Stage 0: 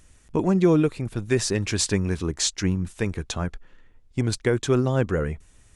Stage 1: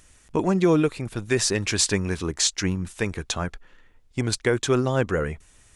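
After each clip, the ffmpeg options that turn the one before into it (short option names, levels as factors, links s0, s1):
-af "lowshelf=f=440:g=-7,alimiter=level_in=3.98:limit=0.891:release=50:level=0:latency=1,volume=0.398"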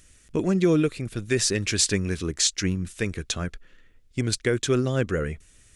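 -af "equalizer=f=890:t=o:w=0.81:g=-12.5"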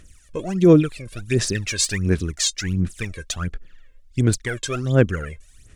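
-af "aphaser=in_gain=1:out_gain=1:delay=1.9:decay=0.77:speed=1.4:type=sinusoidal,volume=0.708"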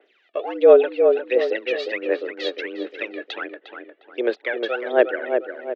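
-filter_complex "[0:a]asplit=2[s0][s1];[s1]adelay=355,lowpass=f=1300:p=1,volume=0.562,asplit=2[s2][s3];[s3]adelay=355,lowpass=f=1300:p=1,volume=0.47,asplit=2[s4][s5];[s5]adelay=355,lowpass=f=1300:p=1,volume=0.47,asplit=2[s6][s7];[s7]adelay=355,lowpass=f=1300:p=1,volume=0.47,asplit=2[s8][s9];[s9]adelay=355,lowpass=f=1300:p=1,volume=0.47,asplit=2[s10][s11];[s11]adelay=355,lowpass=f=1300:p=1,volume=0.47[s12];[s0][s2][s4][s6][s8][s10][s12]amix=inputs=7:normalize=0,highpass=f=260:t=q:w=0.5412,highpass=f=260:t=q:w=1.307,lowpass=f=3500:t=q:w=0.5176,lowpass=f=3500:t=q:w=0.7071,lowpass=f=3500:t=q:w=1.932,afreqshift=120,adynamicequalizer=threshold=0.01:dfrequency=2100:dqfactor=0.7:tfrequency=2100:tqfactor=0.7:attack=5:release=100:ratio=0.375:range=2:mode=cutabove:tftype=highshelf,volume=1.33"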